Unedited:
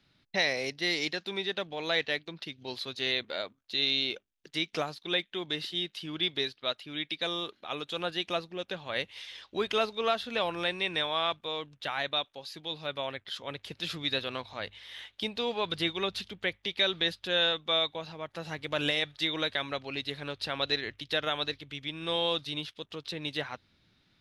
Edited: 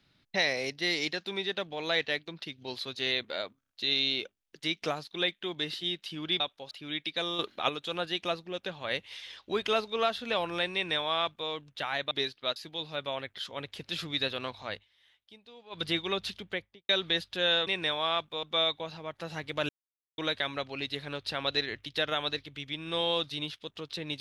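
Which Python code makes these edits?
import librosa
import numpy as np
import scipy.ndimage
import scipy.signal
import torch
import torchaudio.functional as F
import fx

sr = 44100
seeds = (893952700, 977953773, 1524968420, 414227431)

y = fx.studio_fade_out(x, sr, start_s=16.33, length_s=0.47)
y = fx.edit(y, sr, fx.stutter(start_s=3.6, slice_s=0.03, count=4),
    fx.swap(start_s=6.31, length_s=0.45, other_s=12.16, other_length_s=0.31),
    fx.clip_gain(start_s=7.44, length_s=0.3, db=8.0),
    fx.duplicate(start_s=10.79, length_s=0.76, to_s=17.58),
    fx.fade_down_up(start_s=14.64, length_s=1.09, db=-20.5, fade_s=0.12),
    fx.silence(start_s=18.84, length_s=0.49), tone=tone)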